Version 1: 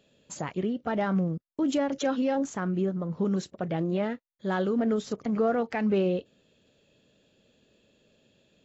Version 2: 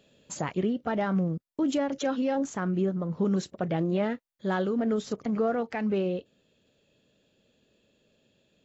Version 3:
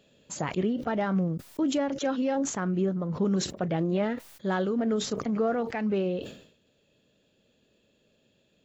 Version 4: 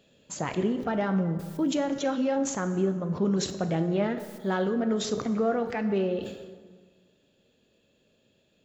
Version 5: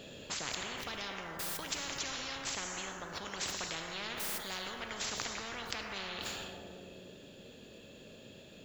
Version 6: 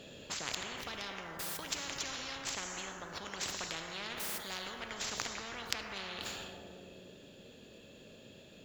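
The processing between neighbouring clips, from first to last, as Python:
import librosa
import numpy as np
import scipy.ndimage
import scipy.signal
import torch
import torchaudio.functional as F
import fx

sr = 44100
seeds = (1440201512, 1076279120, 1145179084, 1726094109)

y1 = fx.rider(x, sr, range_db=3, speed_s=0.5)
y2 = fx.sustainer(y1, sr, db_per_s=93.0)
y3 = fx.rev_plate(y2, sr, seeds[0], rt60_s=1.7, hf_ratio=0.6, predelay_ms=0, drr_db=8.5)
y4 = fx.spectral_comp(y3, sr, ratio=10.0)
y5 = fx.cheby_harmonics(y4, sr, harmonics=(3, 7), levels_db=(-17, -31), full_scale_db=-15.5)
y5 = F.gain(torch.from_numpy(y5), 6.5).numpy()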